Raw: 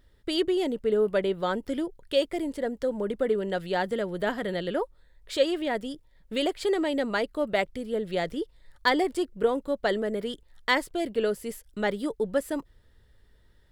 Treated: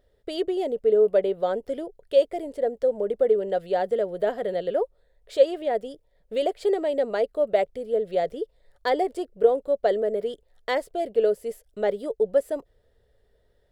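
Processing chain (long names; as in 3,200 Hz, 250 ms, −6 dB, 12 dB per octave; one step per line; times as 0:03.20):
flat-topped bell 550 Hz +12.5 dB 1.1 octaves
level −6.5 dB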